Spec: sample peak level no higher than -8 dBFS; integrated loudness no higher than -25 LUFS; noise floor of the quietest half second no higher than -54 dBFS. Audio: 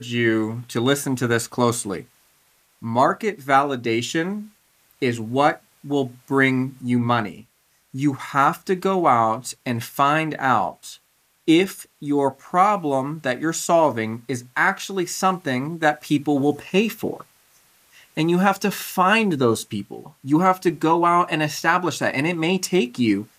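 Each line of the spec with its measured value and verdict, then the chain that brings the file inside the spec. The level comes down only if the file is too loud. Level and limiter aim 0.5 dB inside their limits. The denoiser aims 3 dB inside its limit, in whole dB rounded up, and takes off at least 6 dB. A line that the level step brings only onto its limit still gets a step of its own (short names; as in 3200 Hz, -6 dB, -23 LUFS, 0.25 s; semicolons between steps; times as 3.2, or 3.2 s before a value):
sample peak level -4.5 dBFS: fail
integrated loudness -21.0 LUFS: fail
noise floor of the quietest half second -63 dBFS: OK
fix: gain -4.5 dB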